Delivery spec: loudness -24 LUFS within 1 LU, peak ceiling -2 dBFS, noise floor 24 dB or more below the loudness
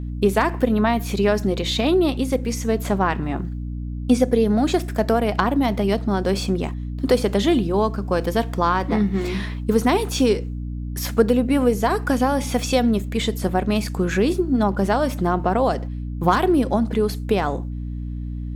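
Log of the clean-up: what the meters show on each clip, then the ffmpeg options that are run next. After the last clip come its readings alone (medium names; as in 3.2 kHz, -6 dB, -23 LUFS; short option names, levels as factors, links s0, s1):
hum 60 Hz; highest harmonic 300 Hz; hum level -26 dBFS; loudness -21.0 LUFS; peak level -4.5 dBFS; loudness target -24.0 LUFS
-> -af "bandreject=f=60:t=h:w=4,bandreject=f=120:t=h:w=4,bandreject=f=180:t=h:w=4,bandreject=f=240:t=h:w=4,bandreject=f=300:t=h:w=4"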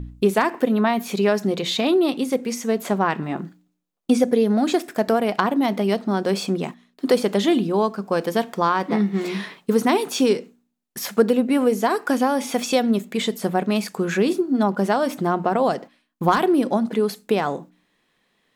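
hum not found; loudness -21.5 LUFS; peak level -5.0 dBFS; loudness target -24.0 LUFS
-> -af "volume=0.75"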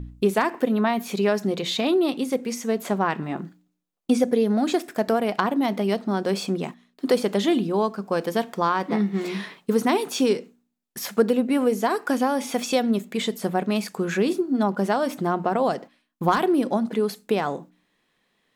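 loudness -24.0 LUFS; peak level -7.5 dBFS; noise floor -71 dBFS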